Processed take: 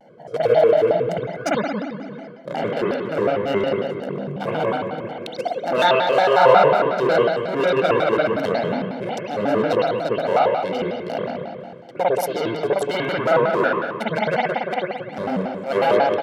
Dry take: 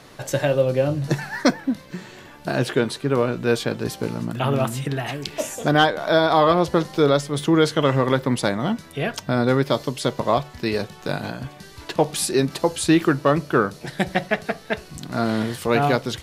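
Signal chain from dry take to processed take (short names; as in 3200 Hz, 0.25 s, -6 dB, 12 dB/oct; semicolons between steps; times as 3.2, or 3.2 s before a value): Wiener smoothing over 41 samples; in parallel at -6.5 dB: wavefolder -16 dBFS; on the sum: comb 1.6 ms, depth 77%; spring tank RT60 1.5 s, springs 58 ms, chirp 55 ms, DRR -7 dB; reverse; upward compressor, threshold -19 dBFS; reverse; HPF 210 Hz 24 dB/oct; shaped vibrato square 5.5 Hz, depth 250 cents; gain -7.5 dB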